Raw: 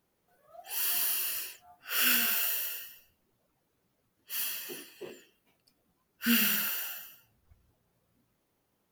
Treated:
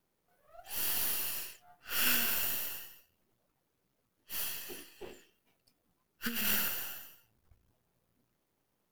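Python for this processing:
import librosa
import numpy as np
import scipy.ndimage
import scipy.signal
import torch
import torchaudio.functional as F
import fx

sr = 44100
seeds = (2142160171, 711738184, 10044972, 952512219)

y = np.where(x < 0.0, 10.0 ** (-12.0 / 20.0) * x, x)
y = fx.over_compress(y, sr, threshold_db=-31.0, ratio=-0.5, at=(6.25, 6.68))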